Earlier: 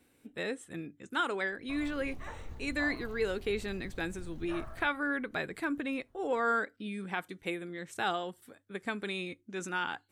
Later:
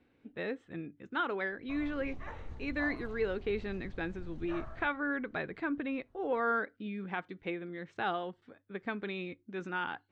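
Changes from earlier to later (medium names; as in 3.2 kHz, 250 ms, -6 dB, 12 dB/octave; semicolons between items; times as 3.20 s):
speech: add distance through air 200 m; master: add distance through air 82 m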